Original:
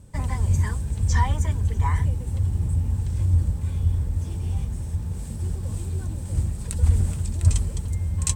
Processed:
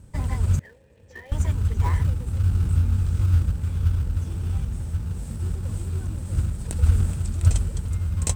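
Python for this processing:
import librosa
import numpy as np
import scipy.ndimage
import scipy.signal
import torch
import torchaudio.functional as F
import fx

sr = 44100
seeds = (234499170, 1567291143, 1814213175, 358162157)

p1 = fx.vowel_filter(x, sr, vowel='e', at=(0.59, 1.32))
p2 = fx.sample_hold(p1, sr, seeds[0], rate_hz=1400.0, jitter_pct=20)
p3 = p1 + F.gain(torch.from_numpy(p2), -8.0).numpy()
p4 = fx.doubler(p3, sr, ms=22.0, db=-4.5, at=(2.42, 3.25))
y = F.gain(torch.from_numpy(p4), -2.5).numpy()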